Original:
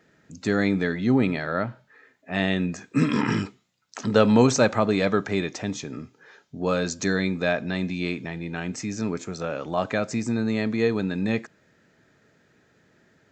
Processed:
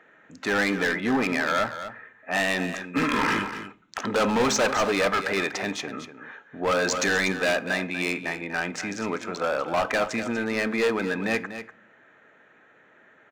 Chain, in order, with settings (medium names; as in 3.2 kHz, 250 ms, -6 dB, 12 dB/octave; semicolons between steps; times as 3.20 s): local Wiener filter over 9 samples; bass shelf 440 Hz -10 dB; overdrive pedal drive 16 dB, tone 2.5 kHz, clips at -7.5 dBFS; hard clipper -21.5 dBFS, distortion -8 dB; delay 243 ms -11 dB; on a send at -17 dB: reverberation, pre-delay 3 ms; 6.77–7.32 s: on the sum: level flattener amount 50%; trim +2 dB